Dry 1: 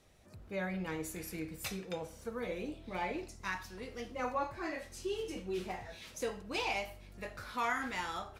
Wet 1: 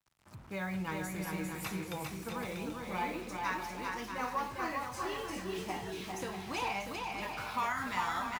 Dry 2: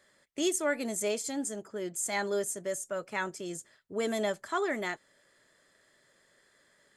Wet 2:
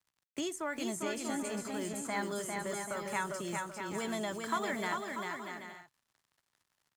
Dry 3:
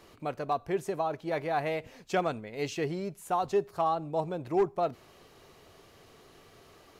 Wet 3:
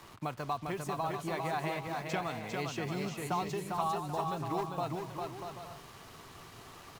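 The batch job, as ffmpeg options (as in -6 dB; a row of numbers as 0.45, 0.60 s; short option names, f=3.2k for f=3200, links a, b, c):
-filter_complex "[0:a]equalizer=f=990:t=o:w=0.58:g=2.5,acrusher=bits=8:mix=0:aa=0.5,acrossover=split=120|2600[a][b][c];[a]acompressor=threshold=-60dB:ratio=4[d];[b]acompressor=threshold=-36dB:ratio=4[e];[c]acompressor=threshold=-47dB:ratio=4[f];[d][e][f]amix=inputs=3:normalize=0,equalizer=f=125:t=o:w=1:g=6,equalizer=f=500:t=o:w=1:g=-6,equalizer=f=1k:t=o:w=1:g=5,aecho=1:1:400|640|784|870.4|922.2:0.631|0.398|0.251|0.158|0.1,volume=1.5dB"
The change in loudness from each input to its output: +2.0, -4.0, -4.5 LU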